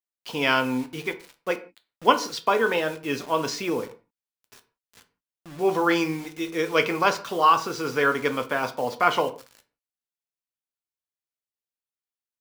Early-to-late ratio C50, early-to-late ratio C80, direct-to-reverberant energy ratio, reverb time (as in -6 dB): 15.0 dB, 20.0 dB, 7.0 dB, no single decay rate